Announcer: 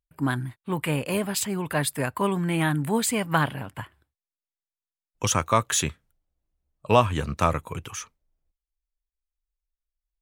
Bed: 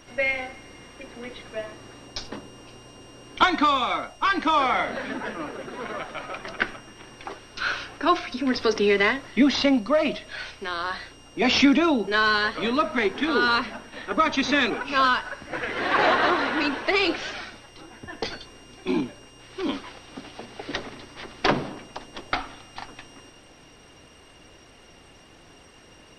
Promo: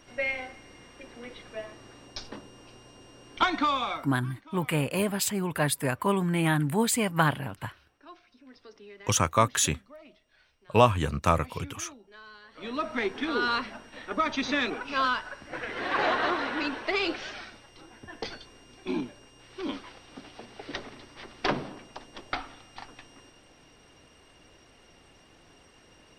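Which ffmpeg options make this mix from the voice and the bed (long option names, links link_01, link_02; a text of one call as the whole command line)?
ffmpeg -i stem1.wav -i stem2.wav -filter_complex "[0:a]adelay=3850,volume=-1dB[link_01];[1:a]volume=17dB,afade=type=out:start_time=3.88:duration=0.25:silence=0.0707946,afade=type=in:start_time=12.48:duration=0.43:silence=0.0749894[link_02];[link_01][link_02]amix=inputs=2:normalize=0" out.wav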